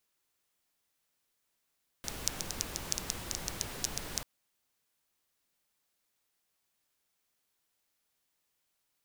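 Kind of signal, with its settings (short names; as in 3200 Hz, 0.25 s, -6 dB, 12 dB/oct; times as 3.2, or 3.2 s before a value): rain from filtered ticks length 2.19 s, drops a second 7.7, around 5900 Hz, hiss -1 dB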